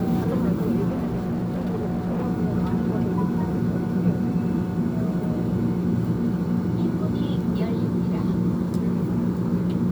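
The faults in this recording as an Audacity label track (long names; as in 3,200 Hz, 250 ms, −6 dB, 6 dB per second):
0.890000	2.250000	clipping −22 dBFS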